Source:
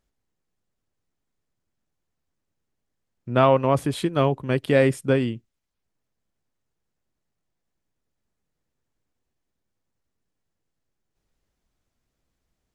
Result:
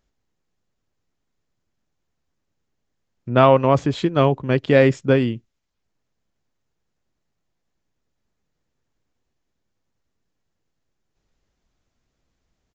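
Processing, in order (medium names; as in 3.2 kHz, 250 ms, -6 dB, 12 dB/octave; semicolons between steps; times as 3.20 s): resampled via 16 kHz; 3.29–5.30 s: tape noise reduction on one side only decoder only; trim +4 dB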